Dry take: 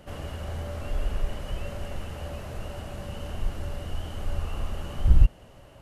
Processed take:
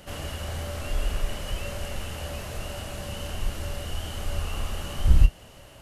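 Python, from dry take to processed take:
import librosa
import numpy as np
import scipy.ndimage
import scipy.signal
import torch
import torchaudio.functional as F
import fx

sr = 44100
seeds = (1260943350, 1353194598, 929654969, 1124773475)

y = fx.high_shelf(x, sr, hz=2000.0, db=10.5)
y = fx.doubler(y, sr, ms=28.0, db=-10.5)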